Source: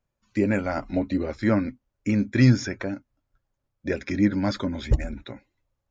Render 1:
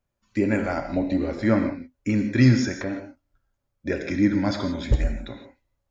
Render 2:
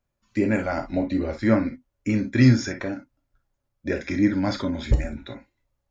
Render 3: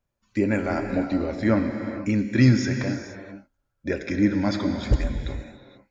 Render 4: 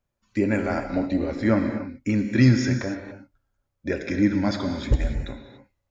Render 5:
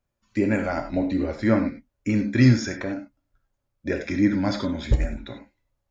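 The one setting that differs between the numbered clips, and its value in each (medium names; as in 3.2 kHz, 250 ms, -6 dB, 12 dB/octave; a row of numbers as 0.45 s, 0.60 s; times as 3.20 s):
gated-style reverb, gate: 190 ms, 80 ms, 510 ms, 310 ms, 120 ms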